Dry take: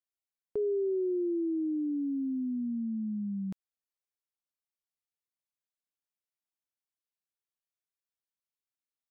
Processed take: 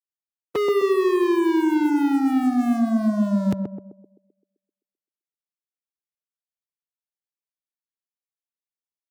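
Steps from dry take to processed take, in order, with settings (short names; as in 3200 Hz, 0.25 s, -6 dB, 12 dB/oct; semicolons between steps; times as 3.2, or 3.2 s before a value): spectral limiter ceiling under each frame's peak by 15 dB; in parallel at -7 dB: requantised 8-bit, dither none; on the sum: HPF 93 Hz 24 dB/oct; sample leveller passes 5; narrowing echo 0.129 s, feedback 53%, band-pass 370 Hz, level -3 dB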